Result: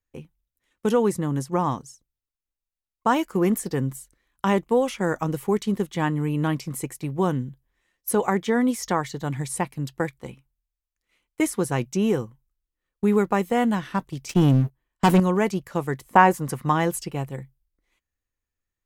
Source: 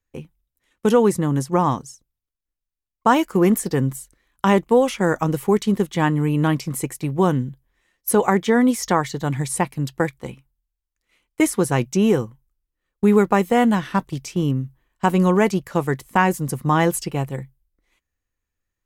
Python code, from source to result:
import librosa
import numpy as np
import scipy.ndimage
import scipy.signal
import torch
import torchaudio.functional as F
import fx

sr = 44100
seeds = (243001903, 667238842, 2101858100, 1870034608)

y = fx.leveller(x, sr, passes=3, at=(14.29, 15.2))
y = fx.peak_eq(y, sr, hz=fx.line((16.07, 510.0), (16.71, 2300.0)), db=9.5, octaves=2.6, at=(16.07, 16.71), fade=0.02)
y = y * 10.0 ** (-5.0 / 20.0)